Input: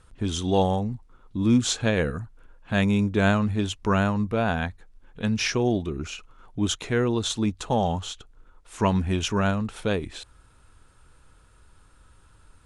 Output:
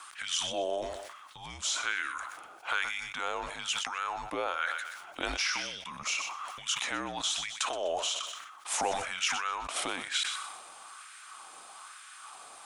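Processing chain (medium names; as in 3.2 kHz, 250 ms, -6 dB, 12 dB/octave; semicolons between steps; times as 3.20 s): high-pass 130 Hz 12 dB/octave; treble shelf 2.2 kHz +9 dB; in parallel at +2 dB: peak limiter -20 dBFS, peak gain reduction 17 dB; on the sum: compression 12:1, threshold -29 dBFS, peak gain reduction 17.5 dB; LFO high-pass sine 1.1 Hz 760–1900 Hz; thinning echo 125 ms, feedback 34%, high-pass 550 Hz, level -16 dB; frequency shift -170 Hz; decay stretcher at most 45 dB/s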